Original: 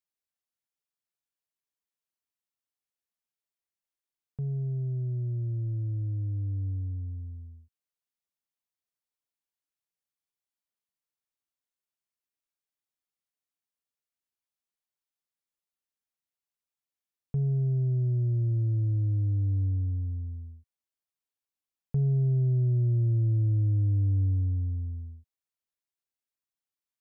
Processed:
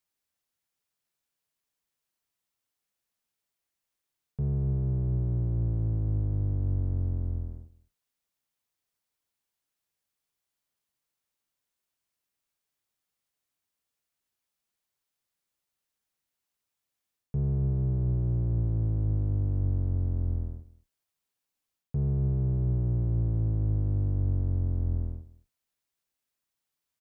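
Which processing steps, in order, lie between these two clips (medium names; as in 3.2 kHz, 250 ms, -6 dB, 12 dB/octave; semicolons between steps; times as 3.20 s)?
octave divider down 1 oct, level -3 dB; reverse; compression 6:1, threshold -32 dBFS, peak gain reduction 11 dB; reverse; delay 207 ms -20 dB; trim +7 dB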